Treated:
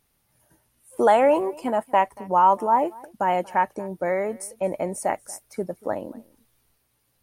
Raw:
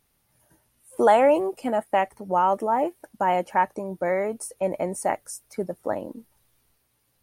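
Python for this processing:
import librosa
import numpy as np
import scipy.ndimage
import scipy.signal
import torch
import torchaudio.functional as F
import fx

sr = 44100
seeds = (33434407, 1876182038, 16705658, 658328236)

y = fx.peak_eq(x, sr, hz=1000.0, db=12.0, octaves=0.2, at=(1.33, 2.83))
y = y + 10.0 ** (-23.5 / 20.0) * np.pad(y, (int(234 * sr / 1000.0), 0))[:len(y)]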